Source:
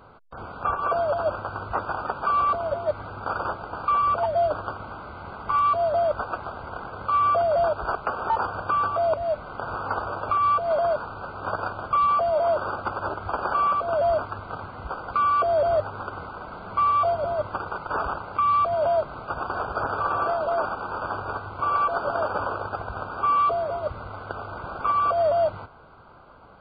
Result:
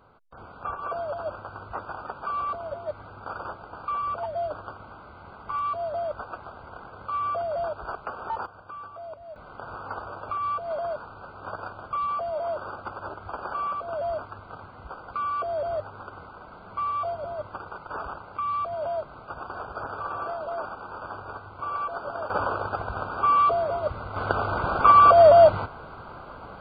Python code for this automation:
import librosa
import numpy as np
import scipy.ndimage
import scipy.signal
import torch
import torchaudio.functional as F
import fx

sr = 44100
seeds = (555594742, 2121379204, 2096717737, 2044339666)

y = fx.gain(x, sr, db=fx.steps((0.0, -7.5), (8.46, -17.0), (9.36, -7.5), (22.3, 1.0), (24.16, 8.5)))